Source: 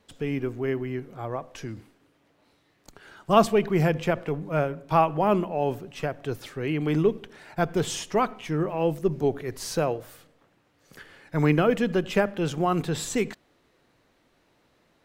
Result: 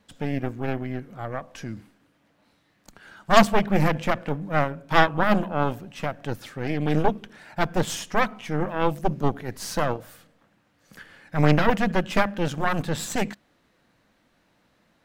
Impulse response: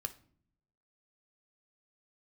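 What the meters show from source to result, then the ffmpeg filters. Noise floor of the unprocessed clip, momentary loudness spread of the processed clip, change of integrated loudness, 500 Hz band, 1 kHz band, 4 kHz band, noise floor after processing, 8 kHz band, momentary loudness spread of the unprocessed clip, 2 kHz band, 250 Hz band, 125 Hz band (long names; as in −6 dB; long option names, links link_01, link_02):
−66 dBFS, 14 LU, +1.0 dB, −1.5 dB, +2.5 dB, +4.0 dB, −66 dBFS, +1.0 dB, 12 LU, +6.5 dB, +1.0 dB, +1.5 dB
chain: -af "aeval=exprs='0.596*(cos(1*acos(clip(val(0)/0.596,-1,1)))-cos(1*PI/2))+0.188*(cos(6*acos(clip(val(0)/0.596,-1,1)))-cos(6*PI/2))':channel_layout=same,equalizer=frequency=200:width_type=o:width=0.33:gain=7,equalizer=frequency=400:width_type=o:width=0.33:gain=-7,equalizer=frequency=1600:width_type=o:width=0.33:gain=3"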